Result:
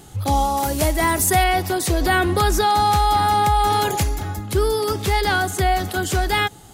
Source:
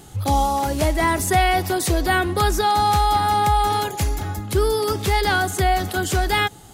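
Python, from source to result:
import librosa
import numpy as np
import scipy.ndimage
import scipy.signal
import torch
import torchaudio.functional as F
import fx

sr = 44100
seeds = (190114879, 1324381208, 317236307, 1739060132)

y = fx.high_shelf(x, sr, hz=8100.0, db=11.0, at=(0.57, 1.44))
y = fx.env_flatten(y, sr, amount_pct=50, at=(2.01, 4.03))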